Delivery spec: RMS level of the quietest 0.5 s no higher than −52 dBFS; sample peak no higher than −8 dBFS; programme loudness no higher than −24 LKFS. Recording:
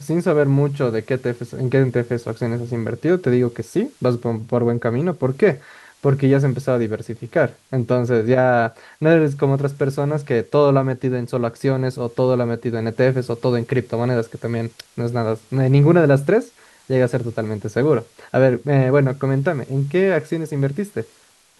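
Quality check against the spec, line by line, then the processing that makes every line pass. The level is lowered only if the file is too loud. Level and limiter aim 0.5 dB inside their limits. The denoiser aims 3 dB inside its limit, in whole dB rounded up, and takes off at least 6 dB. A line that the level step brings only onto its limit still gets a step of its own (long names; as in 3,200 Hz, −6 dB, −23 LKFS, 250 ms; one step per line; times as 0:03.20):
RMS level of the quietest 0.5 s −54 dBFS: in spec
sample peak −3.5 dBFS: out of spec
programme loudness −19.5 LKFS: out of spec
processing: level −5 dB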